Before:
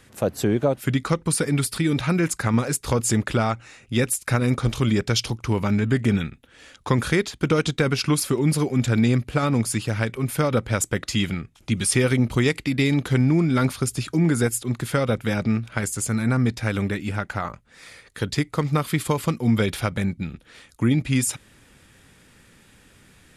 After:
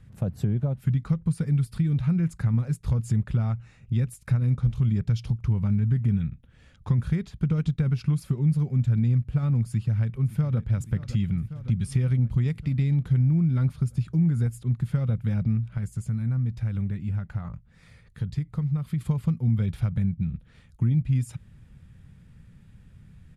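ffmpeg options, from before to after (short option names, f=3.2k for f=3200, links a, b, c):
-filter_complex "[0:a]asplit=2[a][b];[b]afade=t=in:st=9.69:d=0.01,afade=t=out:st=10.59:d=0.01,aecho=0:1:560|1120|1680|2240|2800|3360|3920|4480:0.149624|0.104736|0.0733155|0.0513209|0.0359246|0.0251472|0.0176031|0.0123221[c];[a][c]amix=inputs=2:normalize=0,asettb=1/sr,asplit=3[d][e][f];[d]atrim=end=15.654[g];[e]atrim=start=15.65:end=19.01,asetpts=PTS-STARTPTS,afade=t=in:d=0.004:c=qsin,afade=t=out:st=3.356:d=0.004:c=qsin,acompressor=threshold=-36dB:ratio=1.5:attack=3.2:release=140:knee=1:detection=peak[h];[f]atrim=start=19.006[i];[g][h]acrossfade=d=0.004:c1=hsin:c2=qsin[j];[j][i]acrossfade=d=0.004:c1=qsin:c2=hsin,firequalizer=gain_entry='entry(160,0);entry(290,-19);entry(5900,-26)':delay=0.05:min_phase=1,acompressor=threshold=-33dB:ratio=2,volume=8dB"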